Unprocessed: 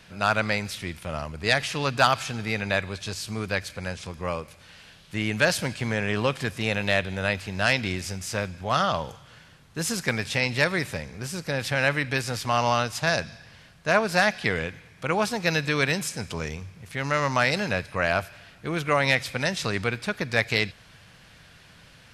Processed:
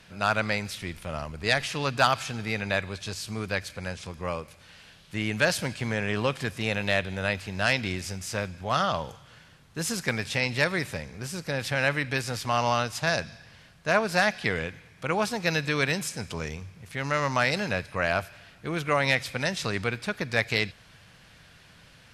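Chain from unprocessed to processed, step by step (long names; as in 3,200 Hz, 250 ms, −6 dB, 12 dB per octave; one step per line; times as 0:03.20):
0:00.80–0:01.66: background noise brown −50 dBFS
level −2 dB
SBC 192 kbit/s 44,100 Hz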